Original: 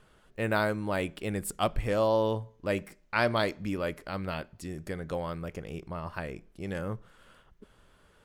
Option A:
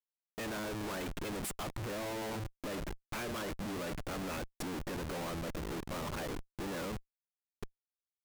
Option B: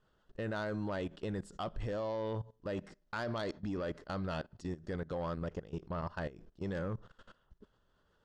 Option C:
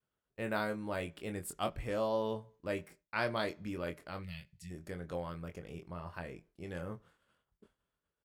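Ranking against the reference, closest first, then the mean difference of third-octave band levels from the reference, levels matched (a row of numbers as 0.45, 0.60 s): C, B, A; 2.5, 4.5, 12.0 dB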